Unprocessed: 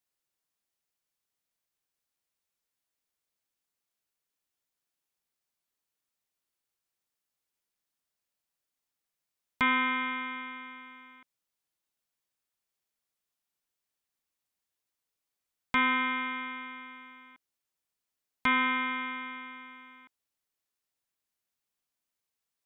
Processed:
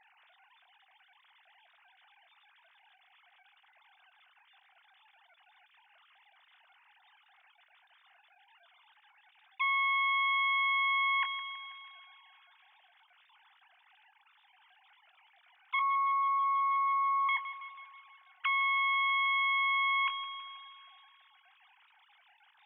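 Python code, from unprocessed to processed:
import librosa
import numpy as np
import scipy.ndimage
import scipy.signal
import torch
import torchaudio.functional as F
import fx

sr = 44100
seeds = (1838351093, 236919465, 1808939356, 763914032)

p1 = fx.sine_speech(x, sr)
p2 = fx.lowpass(p1, sr, hz=1200.0, slope=24, at=(15.79, 17.29))
p3 = fx.doubler(p2, sr, ms=22.0, db=-14)
p4 = p3 + fx.echo_thinned(p3, sr, ms=162, feedback_pct=62, hz=340.0, wet_db=-20, dry=0)
p5 = fx.env_flatten(p4, sr, amount_pct=100)
y = p5 * librosa.db_to_amplitude(-6.5)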